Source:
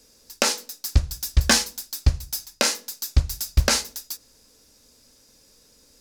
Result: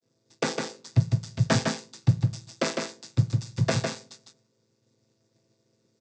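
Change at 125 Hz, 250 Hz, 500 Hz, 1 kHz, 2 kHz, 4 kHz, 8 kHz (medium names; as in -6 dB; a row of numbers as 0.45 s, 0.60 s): +1.5 dB, +3.0 dB, 0.0 dB, -3.0 dB, -6.0 dB, -10.5 dB, -13.0 dB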